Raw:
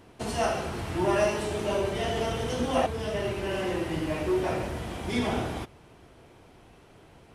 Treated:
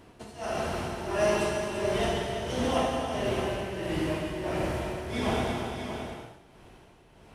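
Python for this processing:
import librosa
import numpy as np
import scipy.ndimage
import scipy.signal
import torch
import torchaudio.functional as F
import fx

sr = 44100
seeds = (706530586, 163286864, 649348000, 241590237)

p1 = x * (1.0 - 0.89 / 2.0 + 0.89 / 2.0 * np.cos(2.0 * np.pi * 1.5 * (np.arange(len(x)) / sr)))
p2 = p1 + fx.echo_multitap(p1, sr, ms=(340, 621), db=(-8.0, -8.5), dry=0)
y = fx.rev_gated(p2, sr, seeds[0], gate_ms=300, shape='flat', drr_db=1.5)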